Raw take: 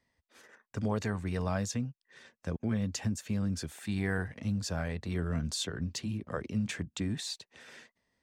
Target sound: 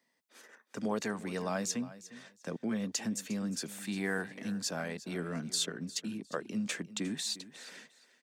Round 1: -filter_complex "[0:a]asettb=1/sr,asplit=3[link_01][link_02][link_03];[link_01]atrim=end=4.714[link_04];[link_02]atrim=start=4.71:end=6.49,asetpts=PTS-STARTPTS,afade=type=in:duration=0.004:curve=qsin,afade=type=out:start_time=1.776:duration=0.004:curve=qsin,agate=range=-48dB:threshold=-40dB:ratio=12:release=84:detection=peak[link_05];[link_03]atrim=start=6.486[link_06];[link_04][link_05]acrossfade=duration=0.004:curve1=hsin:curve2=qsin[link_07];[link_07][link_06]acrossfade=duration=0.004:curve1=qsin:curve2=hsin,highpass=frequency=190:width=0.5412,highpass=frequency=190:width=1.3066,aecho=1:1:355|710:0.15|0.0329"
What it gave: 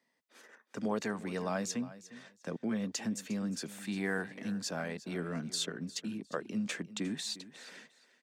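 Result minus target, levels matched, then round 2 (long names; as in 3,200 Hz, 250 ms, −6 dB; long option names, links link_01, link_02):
8,000 Hz band −3.0 dB
-filter_complex "[0:a]asettb=1/sr,asplit=3[link_01][link_02][link_03];[link_01]atrim=end=4.714[link_04];[link_02]atrim=start=4.71:end=6.49,asetpts=PTS-STARTPTS,afade=type=in:duration=0.004:curve=qsin,afade=type=out:start_time=1.776:duration=0.004:curve=qsin,agate=range=-48dB:threshold=-40dB:ratio=12:release=84:detection=peak[link_05];[link_03]atrim=start=6.486[link_06];[link_04][link_05]acrossfade=duration=0.004:curve1=hsin:curve2=qsin[link_07];[link_07][link_06]acrossfade=duration=0.004:curve1=qsin:curve2=hsin,highpass=frequency=190:width=0.5412,highpass=frequency=190:width=1.3066,highshelf=frequency=5400:gain=6,aecho=1:1:355|710:0.15|0.0329"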